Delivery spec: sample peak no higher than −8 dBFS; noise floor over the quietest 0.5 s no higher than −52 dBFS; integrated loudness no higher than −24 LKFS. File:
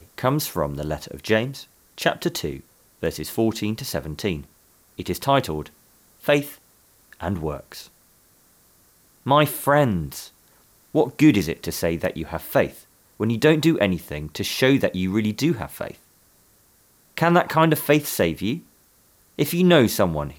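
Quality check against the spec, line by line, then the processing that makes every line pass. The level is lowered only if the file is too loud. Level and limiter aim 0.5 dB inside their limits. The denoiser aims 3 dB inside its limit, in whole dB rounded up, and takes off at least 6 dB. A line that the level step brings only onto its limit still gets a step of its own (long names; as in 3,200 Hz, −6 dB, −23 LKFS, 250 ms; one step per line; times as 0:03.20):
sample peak −5.5 dBFS: out of spec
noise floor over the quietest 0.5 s −58 dBFS: in spec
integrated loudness −22.0 LKFS: out of spec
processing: level −2.5 dB
brickwall limiter −8.5 dBFS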